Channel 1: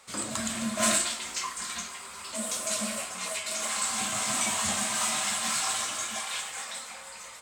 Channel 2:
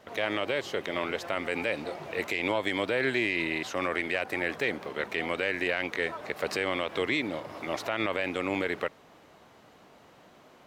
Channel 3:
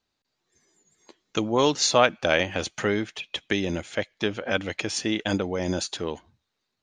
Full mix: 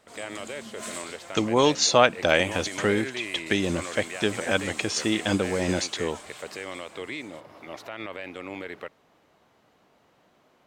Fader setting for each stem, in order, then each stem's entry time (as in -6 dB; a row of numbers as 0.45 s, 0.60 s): -13.0 dB, -7.0 dB, +1.0 dB; 0.00 s, 0.00 s, 0.00 s